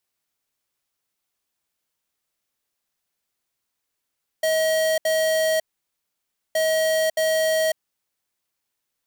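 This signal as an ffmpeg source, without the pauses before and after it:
ffmpeg -f lavfi -i "aevalsrc='0.0944*(2*lt(mod(636*t,1),0.5)-1)*clip(min(mod(mod(t,2.12),0.62),0.55-mod(mod(t,2.12),0.62))/0.005,0,1)*lt(mod(t,2.12),1.24)':duration=4.24:sample_rate=44100" out.wav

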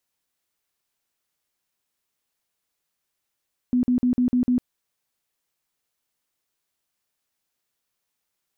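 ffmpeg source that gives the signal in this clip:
ffmpeg -f lavfi -i "aevalsrc='0.15*sin(2*PI*248*mod(t,0.15))*lt(mod(t,0.15),25/248)':duration=0.9:sample_rate=44100" out.wav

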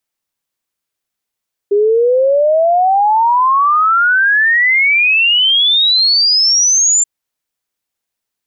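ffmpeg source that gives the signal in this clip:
ffmpeg -f lavfi -i "aevalsrc='0.398*clip(min(t,5.33-t)/0.01,0,1)*sin(2*PI*400*5.33/log(7300/400)*(exp(log(7300/400)*t/5.33)-1))':duration=5.33:sample_rate=44100" out.wav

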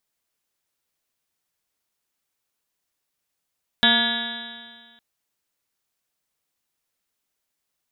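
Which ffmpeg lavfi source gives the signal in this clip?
ffmpeg -f lavfi -i "aevalsrc='0.0794*pow(10,-3*t/1.72)*sin(2*PI*230.24*t)+0.0178*pow(10,-3*t/1.72)*sin(2*PI*461.93*t)+0.0531*pow(10,-3*t/1.72)*sin(2*PI*696.49*t)+0.0398*pow(10,-3*t/1.72)*sin(2*PI*935.33*t)+0.0158*pow(10,-3*t/1.72)*sin(2*PI*1179.8*t)+0.0398*pow(10,-3*t/1.72)*sin(2*PI*1431.21*t)+0.126*pow(10,-3*t/1.72)*sin(2*PI*1690.81*t)+0.0224*pow(10,-3*t/1.72)*sin(2*PI*1959.75*t)+0.0237*pow(10,-3*t/1.72)*sin(2*PI*2239.14*t)+0.0106*pow(10,-3*t/1.72)*sin(2*PI*2530*t)+0.0211*pow(10,-3*t/1.72)*sin(2*PI*2833.26*t)+0.075*pow(10,-3*t/1.72)*sin(2*PI*3149.79*t)+0.126*pow(10,-3*t/1.72)*sin(2*PI*3480.37*t)+0.126*pow(10,-3*t/1.72)*sin(2*PI*3825.71*t)':duration=1.16:sample_rate=44100" out.wav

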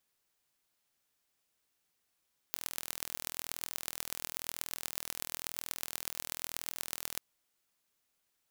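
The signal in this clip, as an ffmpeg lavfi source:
ffmpeg -f lavfi -i "aevalsrc='0.447*eq(mod(n,1076),0)*(0.5+0.5*eq(mod(n,5380),0))':duration=4.65:sample_rate=44100" out.wav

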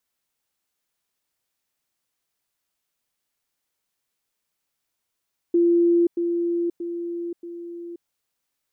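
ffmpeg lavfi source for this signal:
ffmpeg -f lavfi -i "aevalsrc='pow(10,(-14.5-6*floor(t/0.63))/20)*sin(2*PI*343*t)*clip(min(mod(t,0.63),0.53-mod(t,0.63))/0.005,0,1)':duration=2.52:sample_rate=44100" out.wav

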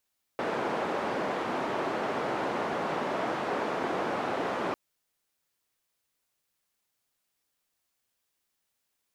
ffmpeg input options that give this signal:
ffmpeg -f lavfi -i "anoisesrc=color=white:duration=4.35:sample_rate=44100:seed=1,highpass=frequency=240,lowpass=frequency=880,volume=-11.3dB" out.wav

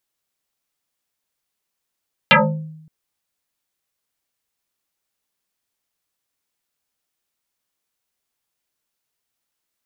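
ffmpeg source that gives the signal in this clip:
ffmpeg -f lavfi -i "aevalsrc='0.501*pow(10,-3*t/0.86)*sin(2*PI*157*t+9.8*pow(10,-3*t/0.48)*sin(2*PI*2.34*157*t))':duration=0.57:sample_rate=44100" out.wav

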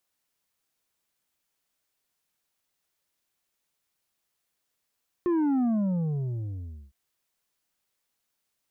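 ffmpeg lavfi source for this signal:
ffmpeg -f lavfi -i "aevalsrc='0.075*clip((1.66-t)/1.29,0,1)*tanh(2*sin(2*PI*360*1.66/log(65/360)*(exp(log(65/360)*t/1.66)-1)))/tanh(2)':duration=1.66:sample_rate=44100" out.wav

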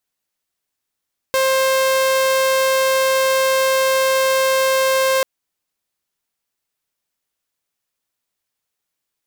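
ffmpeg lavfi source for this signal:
ffmpeg -f lavfi -i "aevalsrc='0.266*(2*mod(529*t,1)-1)':duration=3.89:sample_rate=44100" out.wav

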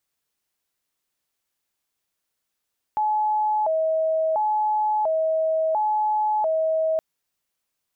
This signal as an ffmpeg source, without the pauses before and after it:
ffmpeg -f lavfi -i "aevalsrc='0.112*sin(2*PI*(746*t+107/0.72*(0.5-abs(mod(0.72*t,1)-0.5))))':duration=4.02:sample_rate=44100" out.wav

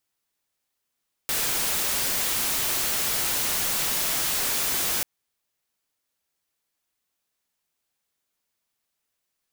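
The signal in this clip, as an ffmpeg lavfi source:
ffmpeg -f lavfi -i "anoisesrc=color=white:amplitude=0.0919:duration=3.74:sample_rate=44100:seed=1" out.wav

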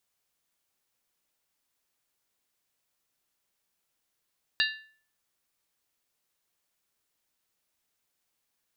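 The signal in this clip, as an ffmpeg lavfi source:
ffmpeg -f lavfi -i "aevalsrc='0.0708*pow(10,-3*t/0.48)*sin(2*PI*1750*t)+0.0596*pow(10,-3*t/0.38)*sin(2*PI*2789.5*t)+0.0501*pow(10,-3*t/0.328)*sin(2*PI*3738*t)+0.0422*pow(10,-3*t/0.317)*sin(2*PI*4018*t)+0.0355*pow(10,-3*t/0.295)*sin(2*PI*4642.8*t)':duration=0.63:sample_rate=44100" out.wav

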